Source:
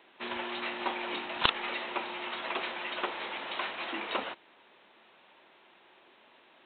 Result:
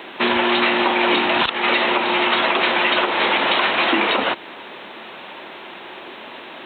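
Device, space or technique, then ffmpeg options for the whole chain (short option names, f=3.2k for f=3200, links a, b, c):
mastering chain: -af "highpass=41,equalizer=f=230:t=o:w=1.7:g=2.5,acompressor=threshold=-39dB:ratio=2.5,alimiter=level_in=29.5dB:limit=-1dB:release=50:level=0:latency=1,volume=-6dB"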